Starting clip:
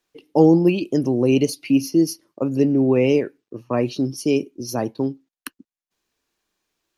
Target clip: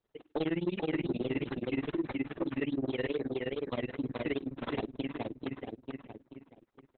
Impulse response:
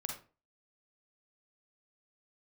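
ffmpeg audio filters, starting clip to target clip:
-filter_complex "[0:a]acrusher=samples=13:mix=1:aa=0.000001:lfo=1:lforange=13:lforate=2.4,asplit=3[a][b][c];[a]afade=t=out:st=1.6:d=0.02[d];[b]equalizer=f=77:w=0.32:g=-3,afade=t=in:st=1.6:d=0.02,afade=t=out:st=3.72:d=0.02[e];[c]afade=t=in:st=3.72:d=0.02[f];[d][e][f]amix=inputs=3:normalize=0,asplit=2[g][h];[h]adelay=440,lowpass=f=4.2k:p=1,volume=-4.5dB,asplit=2[i][j];[j]adelay=440,lowpass=f=4.2k:p=1,volume=0.36,asplit=2[k][l];[l]adelay=440,lowpass=f=4.2k:p=1,volume=0.36,asplit=2[m][n];[n]adelay=440,lowpass=f=4.2k:p=1,volume=0.36,asplit=2[o][p];[p]adelay=440,lowpass=f=4.2k:p=1,volume=0.36[q];[g][i][k][m][o][q]amix=inputs=6:normalize=0,tremolo=f=19:d=0.97,acompressor=threshold=-37dB:ratio=2,adynamicequalizer=threshold=0.00316:dfrequency=1800:dqfactor=0.72:tfrequency=1800:tqfactor=0.72:attack=5:release=100:ratio=0.375:range=2:mode=boostabove:tftype=bell,asoftclip=type=tanh:threshold=-24.5dB,volume=1.5dB" -ar 48000 -c:a libopus -b:a 8k

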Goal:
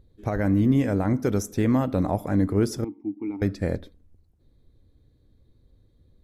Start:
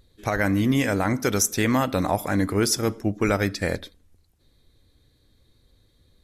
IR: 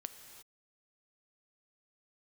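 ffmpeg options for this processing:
-filter_complex "[0:a]asettb=1/sr,asplit=3[a][b][c];[a]atrim=end=2.844[d];[b]atrim=start=2.84:end=3.42,asetpts=PTS-STARTPTS,afade=t=in:d=0.004:c=qsin,afade=t=out:st=0.576:d=0.004:c=qsin,asplit=3[e][f][g];[e]bandpass=f=300:t=q:w=8,volume=0dB[h];[f]bandpass=f=870:t=q:w=8,volume=-6dB[i];[g]bandpass=f=2.24k:t=q:w=8,volume=-9dB[j];[h][i][j]amix=inputs=3:normalize=0[k];[c]atrim=start=3.416[l];[d][k]acrossfade=d=0.004:c1=hsin:c2=qsin[m];[m][l]acrossfade=d=0.004:c1=qsin:c2=hsin,tiltshelf=f=940:g=8.5,volume=-6dB"

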